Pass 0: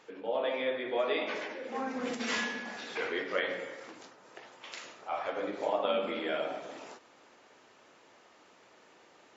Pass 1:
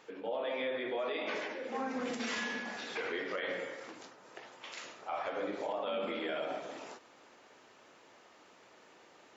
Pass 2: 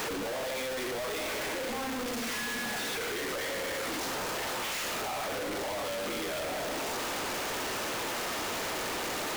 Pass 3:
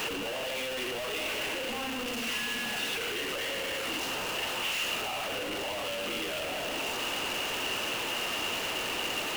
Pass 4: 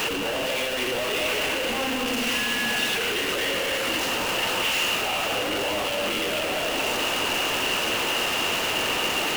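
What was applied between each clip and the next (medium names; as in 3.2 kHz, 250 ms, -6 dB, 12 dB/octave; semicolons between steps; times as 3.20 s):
peak limiter -27.5 dBFS, peak gain reduction 10 dB
one-bit comparator; trim +5.5 dB
peaking EQ 2.8 kHz +15 dB 0.23 oct; trim -1.5 dB
echo whose repeats swap between lows and highs 232 ms, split 2 kHz, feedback 61%, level -5.5 dB; trim +7 dB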